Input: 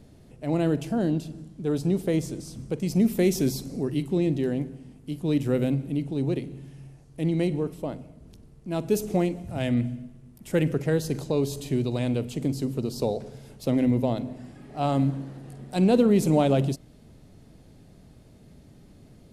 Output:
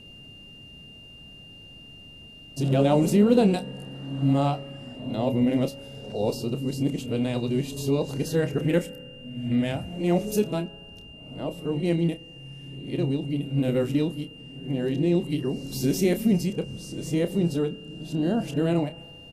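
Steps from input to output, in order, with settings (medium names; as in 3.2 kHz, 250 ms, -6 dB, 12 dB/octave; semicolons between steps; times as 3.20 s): reverse the whole clip; vibrato 4 Hz 7 cents; whistle 2.8 kHz -47 dBFS; doubling 29 ms -10.5 dB; reverberation RT60 1.9 s, pre-delay 3 ms, DRR 17 dB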